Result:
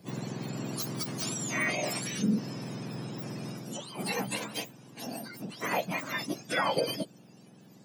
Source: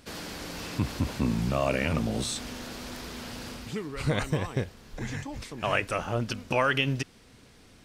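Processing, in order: spectrum mirrored in octaves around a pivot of 1300 Hz; formant shift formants -5 st

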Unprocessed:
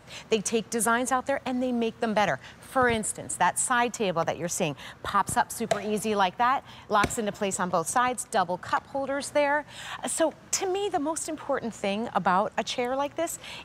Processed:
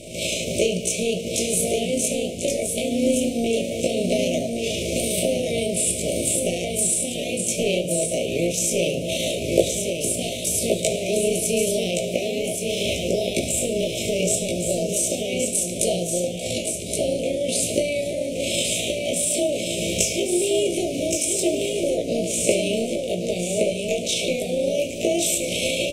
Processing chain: per-bin compression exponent 0.6; recorder AGC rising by 71 dB/s; bell 8900 Hz +2 dB 0.3 oct; notches 60/120/180/240 Hz; granular stretch 1.9×, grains 73 ms; Chebyshev band-stop 650–2300 Hz, order 5; echo 1.121 s -5 dB; reverb RT60 0.75 s, pre-delay 5 ms, DRR 4.5 dB

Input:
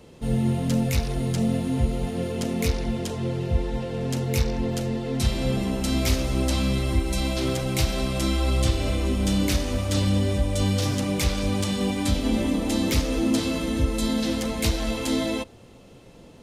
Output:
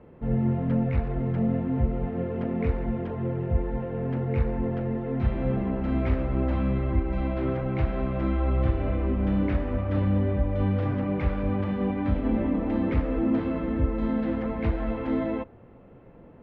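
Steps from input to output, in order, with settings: LPF 1900 Hz 24 dB/oct; gain -1.5 dB

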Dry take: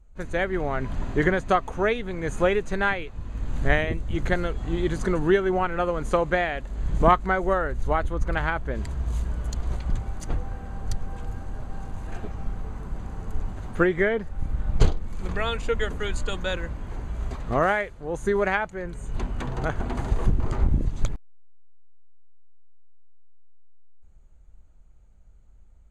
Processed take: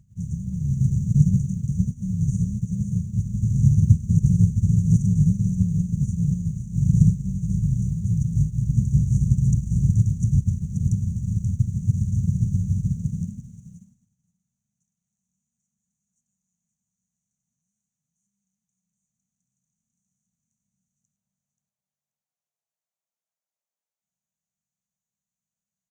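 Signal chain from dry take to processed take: per-bin compression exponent 0.4; LPF 7500 Hz 12 dB/oct; bell 160 Hz +3 dB 0.92 oct; in parallel at -2 dB: limiter -7 dBFS, peak gain reduction 7.5 dB; on the sum: brick-wall FIR band-stop 230–5500 Hz; bit-crush 9-bit; high-pass sweep 100 Hz -> 630 Hz, 12.95–13.89; feedback echo 0.531 s, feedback 23%, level -6 dB; on a send at -18.5 dB: reverb RT60 2.4 s, pre-delay 3 ms; on the sum: upward expander 2.5:1, over -36 dBFS

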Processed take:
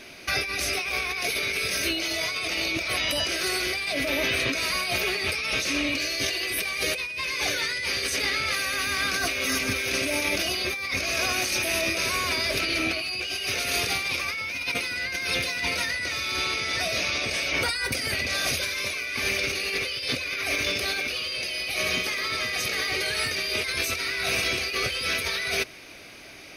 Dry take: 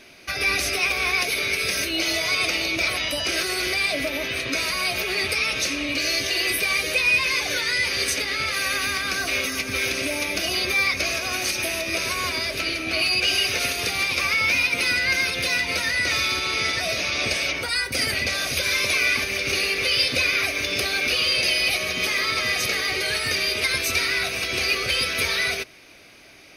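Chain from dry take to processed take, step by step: negative-ratio compressor -28 dBFS, ratio -1

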